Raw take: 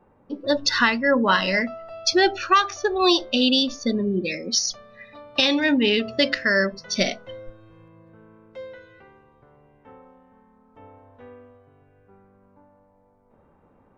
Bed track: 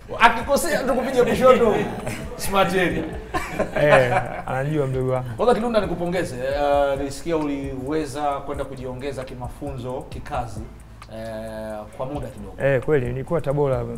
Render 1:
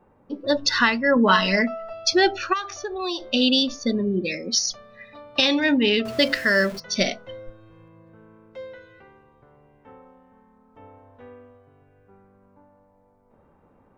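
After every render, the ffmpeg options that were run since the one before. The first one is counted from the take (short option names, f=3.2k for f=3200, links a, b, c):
-filter_complex "[0:a]asettb=1/sr,asplit=3[a][b][c];[a]atrim=end=1.164[d];[b]atrim=start=1.16:end=1.93,asetpts=PTS-STARTPTS,afade=t=in:d=0.004:c=qsin,afade=t=out:st=0.766:d=0.004:c=qsin,aecho=1:1:4.6:0.66,atrim=end_sample=33957[e];[c]atrim=start=1.926[f];[d][e]acrossfade=d=0.004:c1=hsin:c2=qsin[g];[g][f]acrossfade=d=0.004:c1=qsin:c2=hsin,asplit=3[h][i][j];[h]afade=t=out:st=2.52:d=0.02[k];[i]acompressor=threshold=-32dB:ratio=2:attack=3.2:release=140:knee=1:detection=peak,afade=t=in:st=2.52:d=0.02,afade=t=out:st=3.31:d=0.02[l];[j]afade=t=in:st=3.31:d=0.02[m];[k][l][m]amix=inputs=3:normalize=0,asettb=1/sr,asplit=3[n][o][p];[n]atrim=end=6.054[q];[o]atrim=start=6.05:end=6.8,asetpts=PTS-STARTPTS,afade=t=in:d=0.004:c=qsin,afade=t=out:st=0.746:d=0.004:c=qsin,aeval=exprs='val(0)+0.5*0.02*sgn(val(0))':c=same[r];[p]atrim=start=6.796[s];[q][r]acrossfade=d=0.004:c1=hsin:c2=qsin[t];[t][s]acrossfade=d=0.004:c1=qsin:c2=hsin"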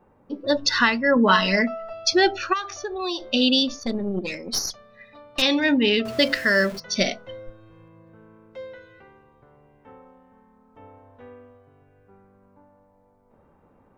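-filter_complex "[0:a]asettb=1/sr,asplit=3[a][b][c];[a]atrim=end=3.804[d];[b]atrim=start=3.8:end=5.42,asetpts=PTS-STARTPTS,afade=t=in:d=0.004:c=qsin,afade=t=out:st=1.616:d=0.004:c=qsin,aeval=exprs='(tanh(7.08*val(0)+0.65)-tanh(0.65))/7.08':c=same[e];[c]atrim=start=5.416[f];[d][e]acrossfade=d=0.004:c1=hsin:c2=qsin[g];[g][f]acrossfade=d=0.004:c1=qsin:c2=hsin"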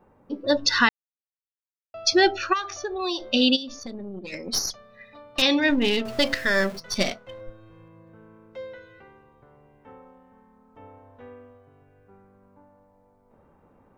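-filter_complex "[0:a]asplit=3[a][b][c];[a]afade=t=out:st=3.55:d=0.02[d];[b]acompressor=threshold=-35dB:ratio=3:attack=3.2:release=140:knee=1:detection=peak,afade=t=in:st=3.55:d=0.02,afade=t=out:st=4.32:d=0.02[e];[c]afade=t=in:st=4.32:d=0.02[f];[d][e][f]amix=inputs=3:normalize=0,asettb=1/sr,asplit=3[g][h][i];[g]atrim=end=5.704[j];[h]atrim=start=5.7:end=7.41,asetpts=PTS-STARTPTS,afade=t=in:d=0.004:c=qsin,afade=t=out:st=1.706:d=0.004:c=qsin,aeval=exprs='if(lt(val(0),0),0.447*val(0),val(0))':c=same[k];[i]atrim=start=7.406[l];[j][k]acrossfade=d=0.004:c1=hsin:c2=qsin[m];[m][l]acrossfade=d=0.004:c1=qsin:c2=hsin,asplit=3[n][o][p];[n]atrim=end=0.89,asetpts=PTS-STARTPTS,afade=t=out:st=0.886:d=0.004:c=hsin[q];[o]atrim=start=0.89:end=1.94,asetpts=PTS-STARTPTS,volume=0[r];[p]atrim=start=1.94,asetpts=PTS-STARTPTS,afade=t=in:d=0.004:c=hsin[s];[q][r][s]concat=n=3:v=0:a=1"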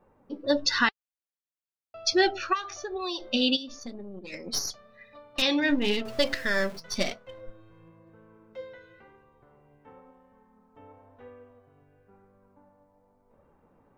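-af "flanger=delay=1.7:depth=5.4:regen=66:speed=0.97:shape=sinusoidal"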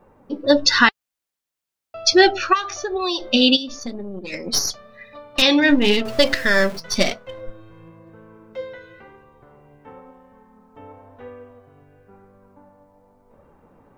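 -af "volume=9.5dB,alimiter=limit=-1dB:level=0:latency=1"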